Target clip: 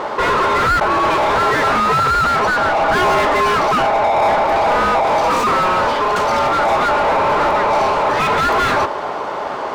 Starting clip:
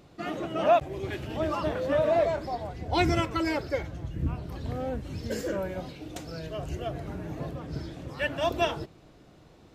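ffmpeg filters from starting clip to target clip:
-filter_complex "[0:a]aeval=exprs='val(0)*sin(2*PI*730*n/s)':c=same,asplit=2[a][b];[b]highpass=f=720:p=1,volume=40dB,asoftclip=type=tanh:threshold=-12dB[c];[a][c]amix=inputs=2:normalize=0,lowpass=f=1.1k:p=1,volume=-6dB,volume=7dB"

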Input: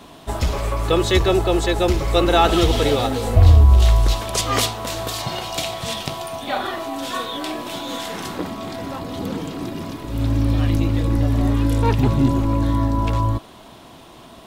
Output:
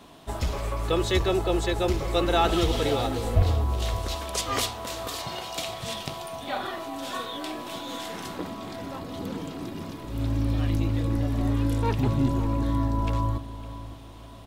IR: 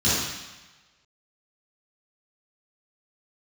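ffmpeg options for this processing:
-filter_complex "[0:a]asettb=1/sr,asplit=3[a][b][c];[a]atrim=end=3.424[d];[b]atrim=start=3.42:end=5.68,asetpts=PTS-STARTPTS,afade=t=in:d=0.004:c=qsin,afade=t=out:st=2.256:d=0.004:c=qsin,highpass=f=170:p=1[e];[c]atrim=start=5.676[f];[d][e]acrossfade=d=0.004:c1=hsin:c2=qsin[g];[g][f]acrossfade=d=0.004:c1=qsin:c2=hsin,asplit=2[h][i];[i]adelay=557,lowpass=f=2k:p=1,volume=-13.5dB,asplit=2[j][k];[k]adelay=557,lowpass=f=2k:p=1,volume=0.39,asplit=2[l][m];[m]adelay=557,lowpass=f=2k:p=1,volume=0.39,asplit=2[n][o];[o]adelay=557,lowpass=f=2k:p=1,volume=0.39[p];[h][j][l][n][p]amix=inputs=5:normalize=0,volume=-7dB"

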